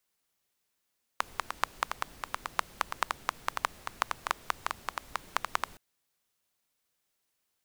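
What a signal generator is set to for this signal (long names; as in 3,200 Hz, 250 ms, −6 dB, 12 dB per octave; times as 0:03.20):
rain-like ticks over hiss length 4.57 s, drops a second 7.4, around 1,100 Hz, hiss −15.5 dB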